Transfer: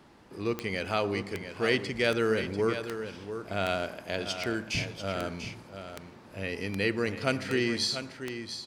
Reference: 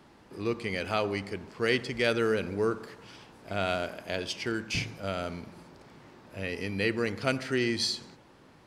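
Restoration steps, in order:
click removal
echo removal 692 ms −9.5 dB

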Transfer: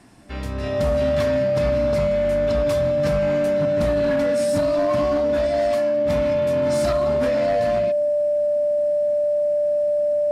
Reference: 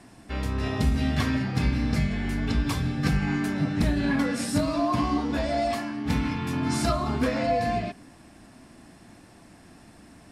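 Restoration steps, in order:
clipped peaks rebuilt −15.5 dBFS
notch filter 590 Hz, Q 30

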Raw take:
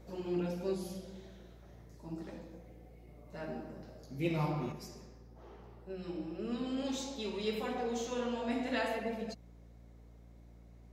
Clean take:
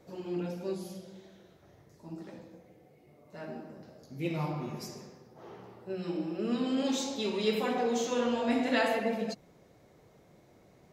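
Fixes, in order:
hum removal 57.6 Hz, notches 5
level 0 dB, from 0:04.72 +6.5 dB

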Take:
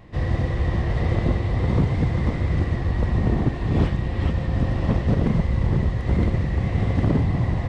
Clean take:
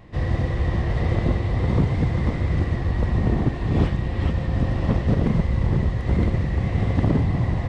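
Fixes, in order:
clipped peaks rebuilt −10.5 dBFS

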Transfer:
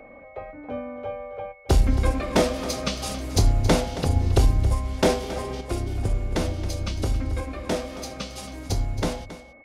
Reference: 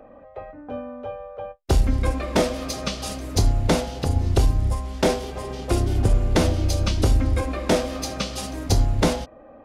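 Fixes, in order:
notch filter 2,200 Hz, Q 30
echo removal 273 ms −14 dB
level correction +6.5 dB, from 0:05.61

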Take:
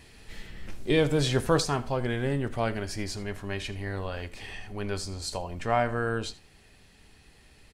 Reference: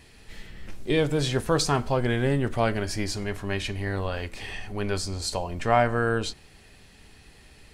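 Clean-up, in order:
echo removal 79 ms −18.5 dB
level 0 dB, from 0:01.60 +4.5 dB

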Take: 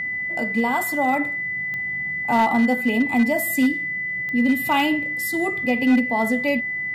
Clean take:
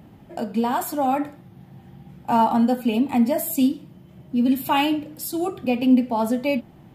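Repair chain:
clipped peaks rebuilt −12 dBFS
click removal
notch filter 2,000 Hz, Q 30

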